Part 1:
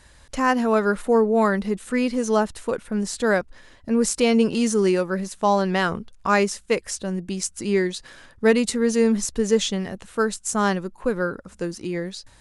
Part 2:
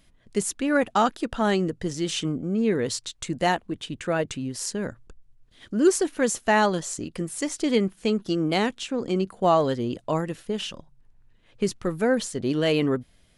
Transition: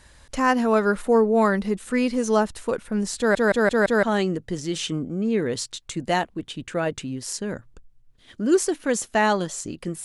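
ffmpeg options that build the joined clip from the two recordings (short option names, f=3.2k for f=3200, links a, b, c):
-filter_complex "[0:a]apad=whole_dur=10.04,atrim=end=10.04,asplit=5[a][b][c][d][e];[a]atrim=end=3.352[f];[b]atrim=start=3.178:end=3.352[g];[c]atrim=start=3.178:end=3.352[h];[d]atrim=start=3.178:end=3.352[i];[e]atrim=start=3.178:end=3.352[j];[1:a]atrim=start=1.358:end=7.37[k];[f][g]acrossfade=d=0.004:c1=hsin:c2=hsin[l];[l][h]acrossfade=d=0.004:c1=hsin:c2=hsin[m];[m][i]acrossfade=d=0.004:c1=hsin:c2=hsin[n];[n][j]acrossfade=d=0.004:c1=hsin:c2=hsin[o];[o][k]acrossfade=d=0.004:c1=hsin:c2=hsin"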